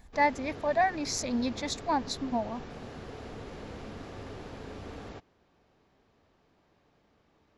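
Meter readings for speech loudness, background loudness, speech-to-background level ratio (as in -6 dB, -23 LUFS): -30.5 LUFS, -44.0 LUFS, 13.5 dB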